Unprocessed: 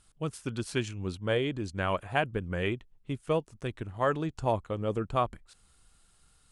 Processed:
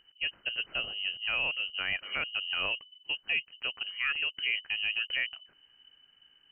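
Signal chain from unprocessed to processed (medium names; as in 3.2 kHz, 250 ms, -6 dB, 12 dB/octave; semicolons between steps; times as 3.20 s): frequency inversion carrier 3 kHz; peak limiter -20.5 dBFS, peak gain reduction 8 dB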